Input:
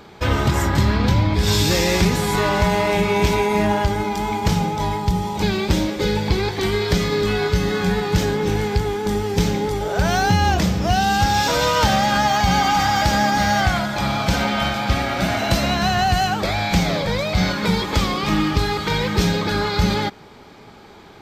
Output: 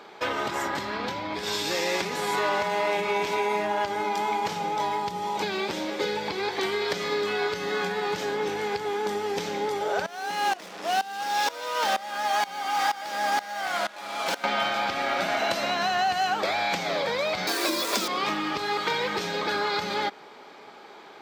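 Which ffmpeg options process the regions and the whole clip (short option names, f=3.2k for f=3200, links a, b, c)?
-filter_complex "[0:a]asettb=1/sr,asplit=3[a][b][c];[a]atrim=end=10.064[d];[b]atrim=start=10.06:end=14.44,asetpts=PTS-STARTPTS,afade=t=in:d=0.004:c=qsin,afade=t=out:st=4.376:d=0.004:c=qsin,acrusher=bits=3:mix=0:aa=0.5,highpass=240,aeval=exprs='val(0)*pow(10,-20*if(lt(mod(-2.1*n/s,1),2*abs(-2.1)/1000),1-mod(-2.1*n/s,1)/(2*abs(-2.1)/1000),(mod(-2.1*n/s,1)-2*abs(-2.1)/1000)/(1-2*abs(-2.1)/1000))/20)':c=same[e];[c]atrim=start=14.436[f];[d][e]acrossfade=d=0.004:c1=hsin:c2=qsin[g];[g][f]acrossfade=d=0.004:c1=qsin:c2=hsin,asettb=1/sr,asplit=3[h][i][j];[h]atrim=end=17.474[k];[i]atrim=start=17.47:end=18.08,asetpts=PTS-STARTPTS,afade=t=in:d=0.004:c=qsin,afade=t=out:st=0.606:d=0.004:c=qsin,acrusher=bits=6:dc=4:mix=0:aa=0.000001,bass=f=250:g=2,treble=f=4k:g=13,afreqshift=140[l];[j]atrim=start=18.076[m];[k][l]acrossfade=d=0.004:c1=hsin:c2=qsin[n];[n][m]acrossfade=d=0.004:c1=qsin:c2=hsin,acompressor=threshold=-19dB:ratio=6,highpass=430,highshelf=f=5.8k:g=-8.5"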